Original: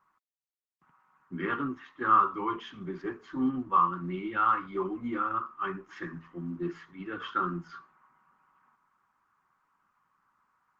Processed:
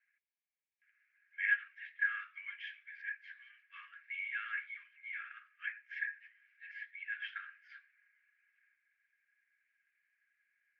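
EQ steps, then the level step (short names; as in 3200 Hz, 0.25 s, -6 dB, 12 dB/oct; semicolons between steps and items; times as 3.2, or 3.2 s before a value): rippled Chebyshev high-pass 1600 Hz, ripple 9 dB; LPF 2600 Hz 24 dB/oct; +11.0 dB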